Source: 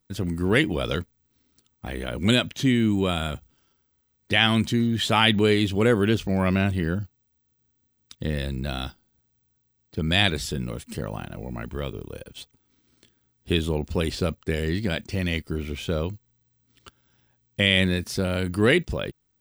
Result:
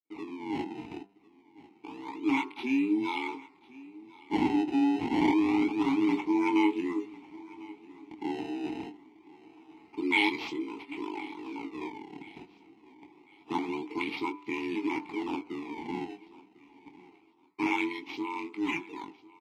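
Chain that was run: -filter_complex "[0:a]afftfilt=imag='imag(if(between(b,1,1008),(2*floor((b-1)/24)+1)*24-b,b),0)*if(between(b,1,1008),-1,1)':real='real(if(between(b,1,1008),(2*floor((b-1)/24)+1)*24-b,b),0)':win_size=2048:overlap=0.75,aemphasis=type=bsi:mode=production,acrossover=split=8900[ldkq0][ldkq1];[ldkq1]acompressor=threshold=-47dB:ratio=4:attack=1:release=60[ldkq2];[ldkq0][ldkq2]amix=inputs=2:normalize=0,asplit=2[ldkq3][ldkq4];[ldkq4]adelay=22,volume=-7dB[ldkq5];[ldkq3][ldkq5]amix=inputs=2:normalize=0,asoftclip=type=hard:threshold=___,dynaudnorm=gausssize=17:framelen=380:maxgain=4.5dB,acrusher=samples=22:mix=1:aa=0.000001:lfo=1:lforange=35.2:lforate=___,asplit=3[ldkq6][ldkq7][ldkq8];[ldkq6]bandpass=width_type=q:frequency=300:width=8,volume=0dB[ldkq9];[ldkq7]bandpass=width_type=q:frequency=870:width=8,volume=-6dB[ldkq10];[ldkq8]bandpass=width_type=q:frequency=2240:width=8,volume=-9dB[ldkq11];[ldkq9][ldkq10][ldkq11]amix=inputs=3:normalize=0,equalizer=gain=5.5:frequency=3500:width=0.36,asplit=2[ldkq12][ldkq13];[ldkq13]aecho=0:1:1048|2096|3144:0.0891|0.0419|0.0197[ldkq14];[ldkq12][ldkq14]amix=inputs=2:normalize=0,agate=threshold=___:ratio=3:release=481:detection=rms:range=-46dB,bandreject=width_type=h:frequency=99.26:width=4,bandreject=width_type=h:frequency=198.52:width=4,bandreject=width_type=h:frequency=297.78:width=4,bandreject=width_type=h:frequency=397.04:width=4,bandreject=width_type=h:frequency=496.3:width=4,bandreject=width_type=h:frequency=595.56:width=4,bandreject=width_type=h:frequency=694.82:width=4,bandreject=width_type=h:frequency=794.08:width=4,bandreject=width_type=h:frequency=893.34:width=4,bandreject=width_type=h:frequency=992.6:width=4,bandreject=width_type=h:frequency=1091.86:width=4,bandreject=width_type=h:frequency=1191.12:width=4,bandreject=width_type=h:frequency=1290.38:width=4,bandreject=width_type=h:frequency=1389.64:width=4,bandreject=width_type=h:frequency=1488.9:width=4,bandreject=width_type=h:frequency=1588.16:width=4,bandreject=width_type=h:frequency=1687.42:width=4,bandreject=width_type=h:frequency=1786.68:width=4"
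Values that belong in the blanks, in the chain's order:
-12.5dB, 0.26, -51dB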